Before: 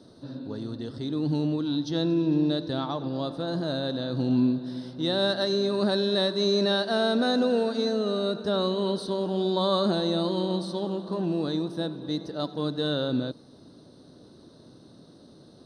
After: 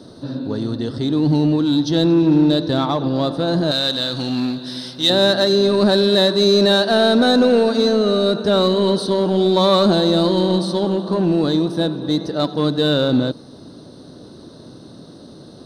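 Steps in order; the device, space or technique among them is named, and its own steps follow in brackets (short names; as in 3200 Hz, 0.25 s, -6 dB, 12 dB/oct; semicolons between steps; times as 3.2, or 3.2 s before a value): parallel distortion (in parallel at -6 dB: hard clip -26.5 dBFS, distortion -8 dB); 3.71–5.1 on the sum: tilt shelf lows -9.5 dB, about 1300 Hz; gain +8 dB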